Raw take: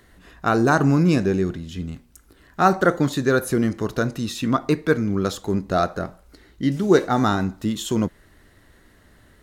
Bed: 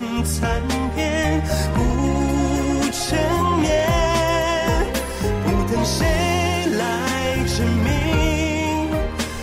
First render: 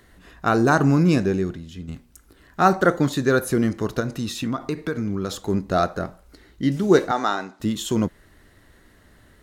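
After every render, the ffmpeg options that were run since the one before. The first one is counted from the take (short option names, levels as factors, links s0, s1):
-filter_complex "[0:a]asettb=1/sr,asplit=3[s0][s1][s2];[s0]atrim=end=4.004[s3];[s1]atrim=start=4:end=5.42,asetpts=PTS-STARTPTS,afade=t=in:d=0.004:c=qsin,afade=t=out:st=1.416:d=0.004:c=qsin,acompressor=threshold=0.0891:ratio=6:attack=3.2:release=140:knee=1:detection=peak[s4];[s2]atrim=start=5.416[s5];[s3][s4]acrossfade=d=0.004:c1=hsin:c2=qsin[s6];[s6][s5]acrossfade=d=0.004:c1=qsin:c2=hsin,asettb=1/sr,asplit=3[s7][s8][s9];[s7]atrim=end=7.114[s10];[s8]atrim=start=7.11:end=7.6,asetpts=PTS-STARTPTS,afade=t=in:d=0.004:c=qsin,afade=t=out:st=0.486:d=0.004:c=qsin,highpass=470,lowpass=7100[s11];[s9]atrim=start=7.596[s12];[s10][s11]acrossfade=d=0.004:c1=hsin:c2=qsin[s13];[s13][s12]acrossfade=d=0.004:c1=qsin:c2=hsin,asplit=2[s14][s15];[s14]atrim=end=1.88,asetpts=PTS-STARTPTS,afade=t=out:st=1.16:d=0.72:silence=0.446684[s16];[s15]atrim=start=1.88,asetpts=PTS-STARTPTS,afade=t=in:d=0.004:c=hsin:silence=0.446684[s17];[s16][s17]concat=n=2:v=0:a=1"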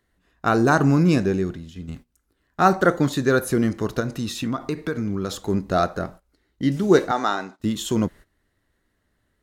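-af "agate=range=0.141:threshold=0.01:ratio=16:detection=peak"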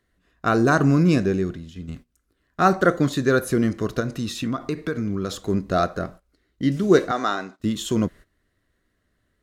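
-af "highshelf=f=11000:g=-5,bandreject=f=860:w=5.1"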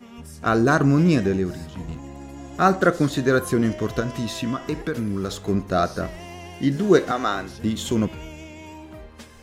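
-filter_complex "[1:a]volume=0.112[s0];[0:a][s0]amix=inputs=2:normalize=0"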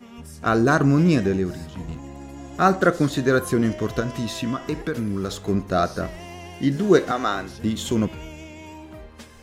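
-af anull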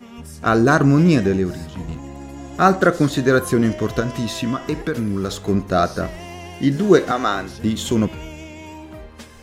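-af "volume=1.5,alimiter=limit=0.891:level=0:latency=1"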